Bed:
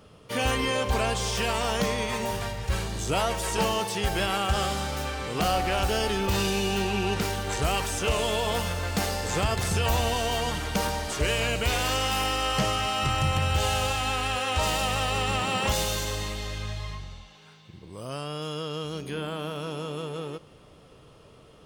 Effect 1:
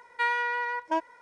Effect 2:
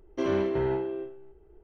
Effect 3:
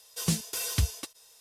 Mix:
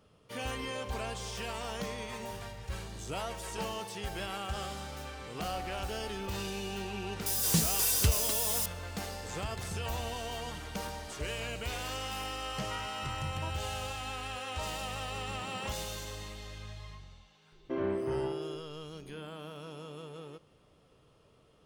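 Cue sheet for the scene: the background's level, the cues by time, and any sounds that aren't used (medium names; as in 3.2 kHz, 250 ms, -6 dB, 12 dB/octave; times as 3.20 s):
bed -11.5 dB
7.26 s: add 3 -1 dB + zero-crossing glitches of -26.5 dBFS
12.51 s: add 1 -16.5 dB + reverb removal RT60 0.77 s
17.52 s: add 2 -6 dB + low-pass 2.3 kHz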